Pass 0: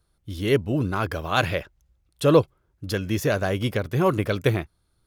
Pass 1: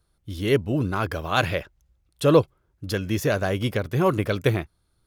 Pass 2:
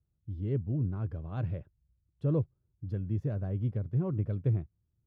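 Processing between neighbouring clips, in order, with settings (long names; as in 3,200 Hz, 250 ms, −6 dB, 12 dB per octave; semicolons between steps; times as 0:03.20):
no processing that can be heard
resonant band-pass 110 Hz, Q 1.3; level −2.5 dB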